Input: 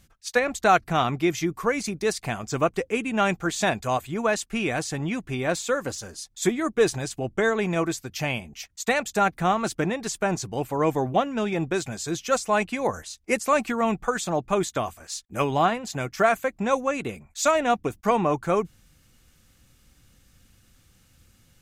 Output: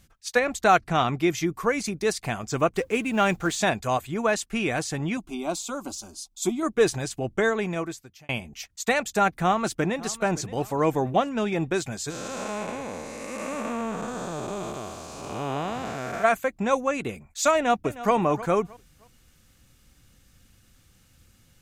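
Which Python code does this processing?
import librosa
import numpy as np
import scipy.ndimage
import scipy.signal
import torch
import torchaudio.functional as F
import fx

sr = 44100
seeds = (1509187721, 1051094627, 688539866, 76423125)

y = fx.lowpass(x, sr, hz=10000.0, slope=12, at=(0.78, 1.19))
y = fx.law_mismatch(y, sr, coded='mu', at=(2.75, 3.56))
y = fx.fixed_phaser(y, sr, hz=480.0, stages=6, at=(5.17, 6.63))
y = fx.echo_throw(y, sr, start_s=9.35, length_s=0.83, ms=570, feedback_pct=40, wet_db=-18.0)
y = fx.spec_blur(y, sr, span_ms=451.0, at=(12.09, 16.23), fade=0.02)
y = fx.echo_throw(y, sr, start_s=17.53, length_s=0.61, ms=310, feedback_pct=30, wet_db=-15.5)
y = fx.edit(y, sr, fx.fade_out_span(start_s=7.42, length_s=0.87), tone=tone)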